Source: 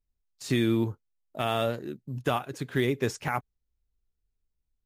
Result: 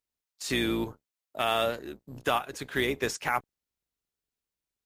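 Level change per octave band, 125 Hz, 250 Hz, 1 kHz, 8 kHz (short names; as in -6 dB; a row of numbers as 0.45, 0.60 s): -10.0, -4.5, +2.0, +4.0 dB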